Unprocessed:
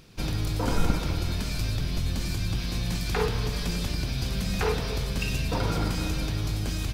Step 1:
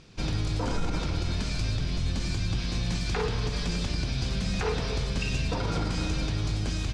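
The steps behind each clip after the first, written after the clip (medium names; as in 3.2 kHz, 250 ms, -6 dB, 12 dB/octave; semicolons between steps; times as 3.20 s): low-pass 7.9 kHz 24 dB/octave; peak limiter -19 dBFS, peak gain reduction 9.5 dB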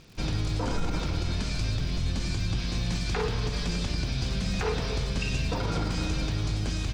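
crackle 160 per s -44 dBFS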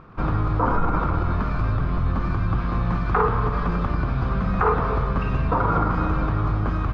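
resonant low-pass 1.2 kHz, resonance Q 5.2; trim +6 dB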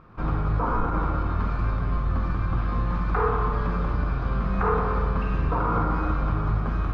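reverberation RT60 1.2 s, pre-delay 5 ms, DRR 1 dB; trim -6 dB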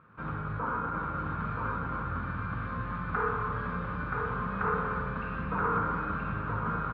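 cabinet simulation 110–3600 Hz, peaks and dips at 340 Hz -7 dB, 720 Hz -7 dB, 1.5 kHz +8 dB; delay 976 ms -3.5 dB; trim -6.5 dB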